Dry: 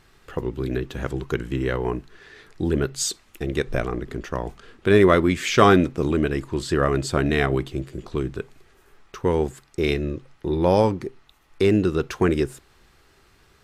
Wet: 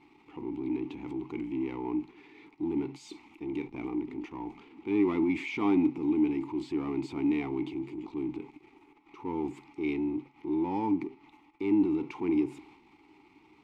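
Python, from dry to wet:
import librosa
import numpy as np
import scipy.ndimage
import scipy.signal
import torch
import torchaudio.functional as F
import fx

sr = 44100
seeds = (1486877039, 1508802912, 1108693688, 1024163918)

y = fx.power_curve(x, sr, exponent=0.7)
y = fx.transient(y, sr, attack_db=-4, sustain_db=6)
y = fx.vowel_filter(y, sr, vowel='u')
y = y * 10.0 ** (-3.0 / 20.0)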